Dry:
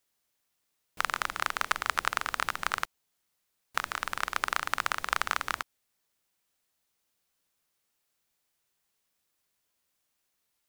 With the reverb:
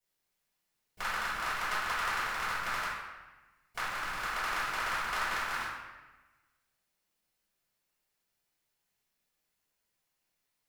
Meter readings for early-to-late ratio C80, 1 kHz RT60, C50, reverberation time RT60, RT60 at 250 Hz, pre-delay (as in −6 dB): 2.0 dB, 1.2 s, −1.0 dB, 1.2 s, 1.4 s, 3 ms